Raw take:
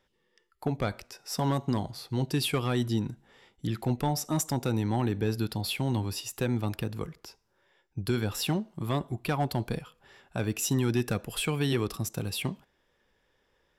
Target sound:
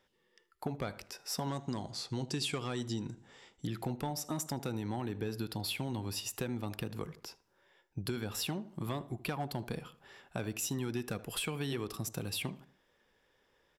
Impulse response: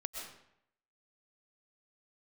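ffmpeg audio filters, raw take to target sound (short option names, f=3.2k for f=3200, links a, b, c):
-filter_complex "[0:a]lowshelf=f=110:g=-7,acompressor=threshold=-34dB:ratio=4,asettb=1/sr,asplit=3[a][b][c];[a]atrim=end=1.484[d];[b]atrim=start=1.48:end=3.65,asetpts=PTS-STARTPTS,afade=t=in:d=0.004:c=qsin,afade=t=out:st=2.166:d=0.004:c=qsin,lowpass=f=7.3k:t=q:w=2.4[e];[c]atrim=start=3.646[f];[d][e]acrossfade=d=0.004:c1=hsin:c2=qsin[g];[g][f]acrossfade=d=0.004:c1=qsin:c2=hsin,asplit=2[h][i];[i]adelay=78,lowpass=f=1.4k:p=1,volume=-15.5dB,asplit=2[j][k];[k]adelay=78,lowpass=f=1.4k:p=1,volume=0.39,asplit=2[l][m];[m]adelay=78,lowpass=f=1.4k:p=1,volume=0.39[n];[h][j][l][n]amix=inputs=4:normalize=0"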